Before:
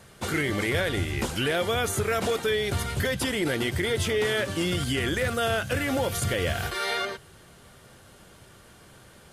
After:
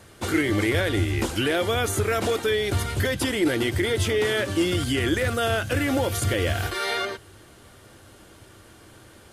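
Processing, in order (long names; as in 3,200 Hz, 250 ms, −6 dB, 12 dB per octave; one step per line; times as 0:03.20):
thirty-one-band graphic EQ 100 Hz +6 dB, 160 Hz −9 dB, 315 Hz +8 dB
level +1.5 dB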